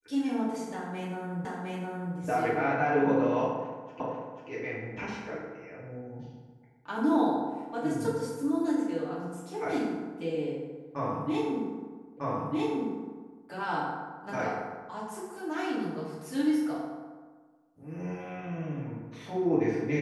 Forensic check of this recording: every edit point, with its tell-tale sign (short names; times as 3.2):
1.45 repeat of the last 0.71 s
4 repeat of the last 0.49 s
12.17 repeat of the last 1.25 s